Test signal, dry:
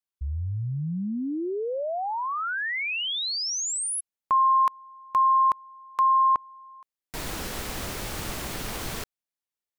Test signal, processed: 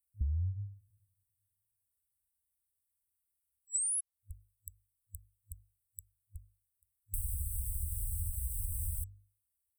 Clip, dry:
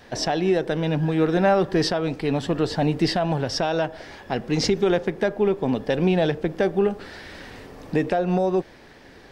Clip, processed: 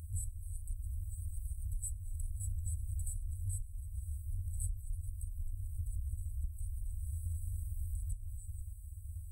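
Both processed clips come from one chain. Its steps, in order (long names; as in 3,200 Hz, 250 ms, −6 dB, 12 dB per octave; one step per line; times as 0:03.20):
high-pass filter 72 Hz 6 dB per octave
mains-hum notches 50/100/150/200/250/300 Hz
brick-wall band-stop 100–7,800 Hz
low-shelf EQ 300 Hz +10.5 dB
downward compressor 6 to 1, threshold −43 dBFS
level +9.5 dB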